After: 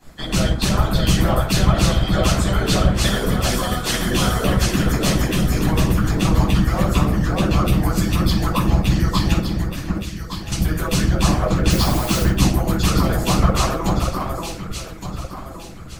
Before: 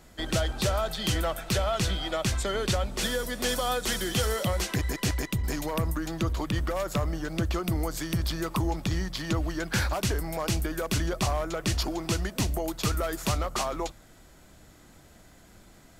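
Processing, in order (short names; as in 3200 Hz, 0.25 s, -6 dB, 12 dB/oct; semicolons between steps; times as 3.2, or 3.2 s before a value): 9.33–10.52 passive tone stack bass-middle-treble 6-0-2; echo with dull and thin repeats by turns 0.583 s, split 1800 Hz, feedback 58%, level -2.5 dB; 11.7–12.23 requantised 6-bit, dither triangular; shoebox room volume 670 m³, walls furnished, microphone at 8.8 m; harmonic-percussive split harmonic -16 dB; gain +2 dB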